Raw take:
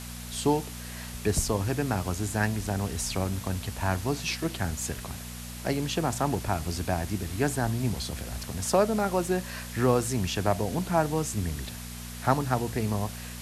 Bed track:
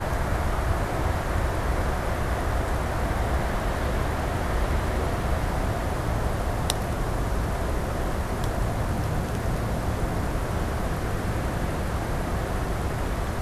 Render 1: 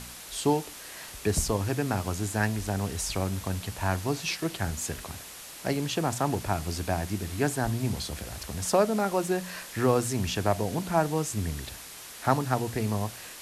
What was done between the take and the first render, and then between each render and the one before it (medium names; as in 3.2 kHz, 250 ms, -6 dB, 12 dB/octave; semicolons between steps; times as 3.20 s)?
de-hum 60 Hz, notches 4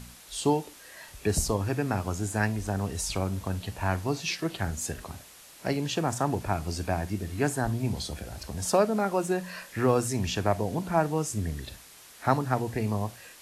noise print and reduce 7 dB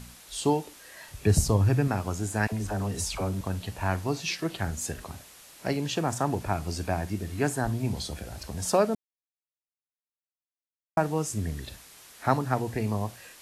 1.11–1.88 s: peaking EQ 110 Hz +9.5 dB 1.5 oct; 2.47–3.41 s: phase dispersion lows, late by 55 ms, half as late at 480 Hz; 8.95–10.97 s: mute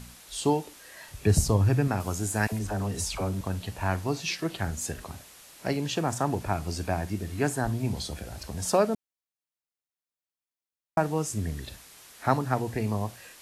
2.00–2.59 s: treble shelf 6.6 kHz +8 dB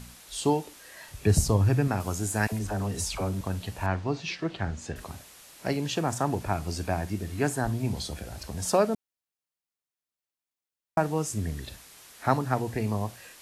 3.86–4.96 s: distance through air 130 m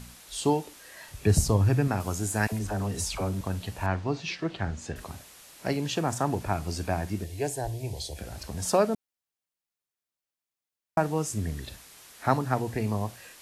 7.24–8.19 s: static phaser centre 530 Hz, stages 4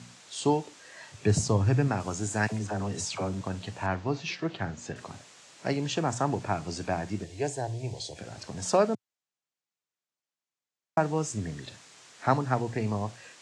elliptic band-pass 110–7500 Hz, stop band 40 dB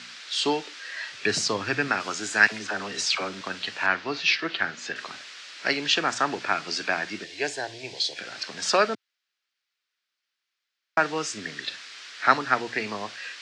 Chebyshev high-pass 310 Hz, order 2; high-order bell 2.6 kHz +14.5 dB 2.4 oct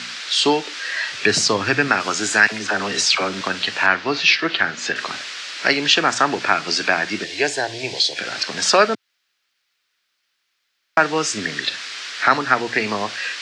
in parallel at 0 dB: compression, threshold -32 dBFS, peak gain reduction 18.5 dB; on the sum: loudness maximiser +5.5 dB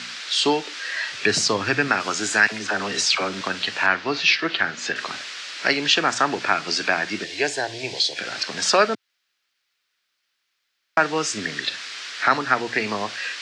trim -3 dB